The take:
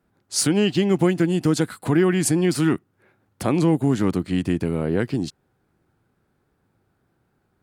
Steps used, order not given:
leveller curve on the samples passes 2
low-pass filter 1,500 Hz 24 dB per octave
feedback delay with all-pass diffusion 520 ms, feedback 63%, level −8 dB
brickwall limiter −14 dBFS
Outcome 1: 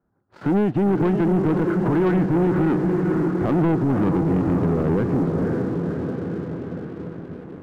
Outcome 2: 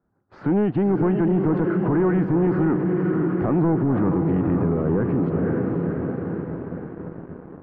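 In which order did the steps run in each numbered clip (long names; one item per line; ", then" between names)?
feedback delay with all-pass diffusion, then brickwall limiter, then low-pass filter, then leveller curve on the samples
feedback delay with all-pass diffusion, then leveller curve on the samples, then brickwall limiter, then low-pass filter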